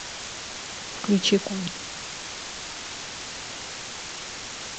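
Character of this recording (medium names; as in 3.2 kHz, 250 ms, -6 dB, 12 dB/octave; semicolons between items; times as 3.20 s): chopped level 1.2 Hz, depth 60%, duty 80%; a quantiser's noise floor 6-bit, dither triangular; G.722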